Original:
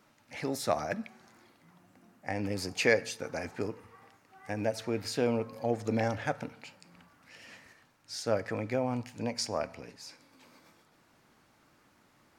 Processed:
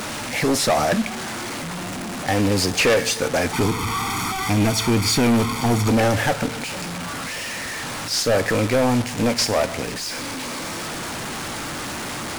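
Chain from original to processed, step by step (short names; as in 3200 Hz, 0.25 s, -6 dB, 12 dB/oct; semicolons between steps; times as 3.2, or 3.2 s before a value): delta modulation 64 kbps, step -39.5 dBFS; 3.53–5.91 comb 0.9 ms, depth 88%; sample leveller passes 5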